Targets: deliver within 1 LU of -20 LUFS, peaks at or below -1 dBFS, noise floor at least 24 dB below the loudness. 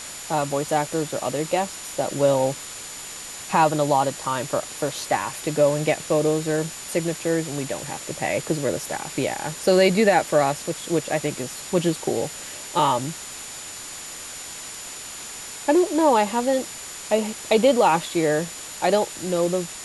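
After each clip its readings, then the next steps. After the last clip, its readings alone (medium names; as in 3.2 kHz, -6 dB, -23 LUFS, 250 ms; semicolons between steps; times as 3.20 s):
steady tone 7 kHz; tone level -39 dBFS; noise floor -37 dBFS; noise floor target -48 dBFS; loudness -23.5 LUFS; peak level -5.0 dBFS; loudness target -20.0 LUFS
-> band-stop 7 kHz, Q 30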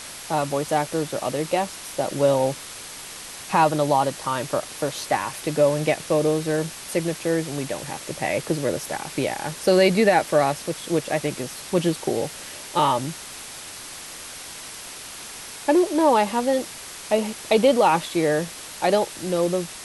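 steady tone not found; noise floor -38 dBFS; noise floor target -47 dBFS
-> noise reduction 9 dB, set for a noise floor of -38 dBFS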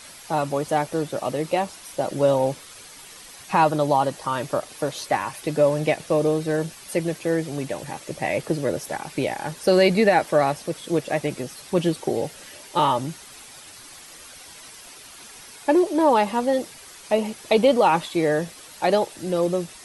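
noise floor -44 dBFS; noise floor target -47 dBFS
-> noise reduction 6 dB, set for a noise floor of -44 dBFS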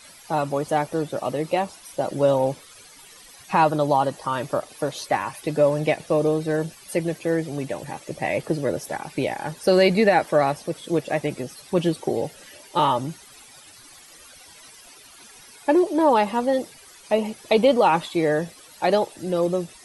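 noise floor -48 dBFS; loudness -23.0 LUFS; peak level -5.0 dBFS; loudness target -20.0 LUFS
-> trim +3 dB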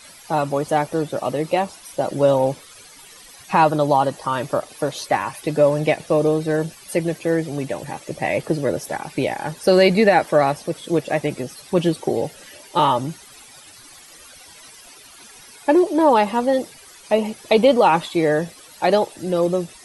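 loudness -20.0 LUFS; peak level -2.0 dBFS; noise floor -45 dBFS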